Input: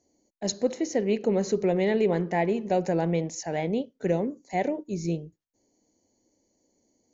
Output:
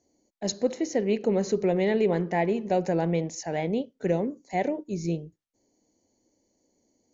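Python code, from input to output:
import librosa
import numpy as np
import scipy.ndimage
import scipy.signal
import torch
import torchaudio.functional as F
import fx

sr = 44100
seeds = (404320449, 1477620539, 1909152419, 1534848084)

y = scipy.signal.sosfilt(scipy.signal.butter(2, 8200.0, 'lowpass', fs=sr, output='sos'), x)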